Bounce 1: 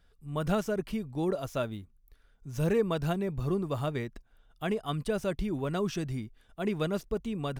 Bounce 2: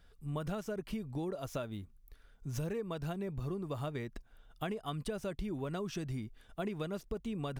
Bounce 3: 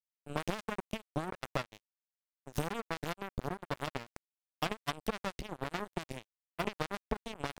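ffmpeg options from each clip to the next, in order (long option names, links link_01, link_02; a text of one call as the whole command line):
ffmpeg -i in.wav -af "acompressor=threshold=-37dB:ratio=10,volume=2.5dB" out.wav
ffmpeg -i in.wav -af "acrusher=bits=4:mix=0:aa=0.5,volume=5.5dB" out.wav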